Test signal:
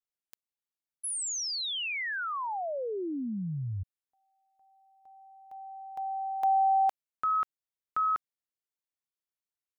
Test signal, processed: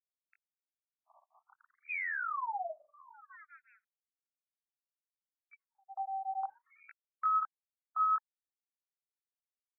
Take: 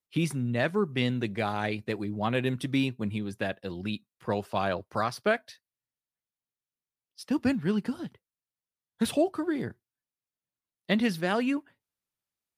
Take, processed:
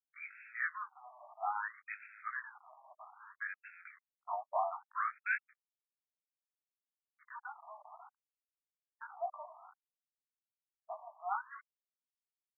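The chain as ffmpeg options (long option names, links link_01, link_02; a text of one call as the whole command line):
ffmpeg -i in.wav -af "flanger=delay=17:depth=3.5:speed=1.3,acrusher=bits=6:mix=0:aa=0.5,afftfilt=real='re*between(b*sr/1024,840*pow(1900/840,0.5+0.5*sin(2*PI*0.61*pts/sr))/1.41,840*pow(1900/840,0.5+0.5*sin(2*PI*0.61*pts/sr))*1.41)':imag='im*between(b*sr/1024,840*pow(1900/840,0.5+0.5*sin(2*PI*0.61*pts/sr))/1.41,840*pow(1900/840,0.5+0.5*sin(2*PI*0.61*pts/sr))*1.41)':win_size=1024:overlap=0.75" out.wav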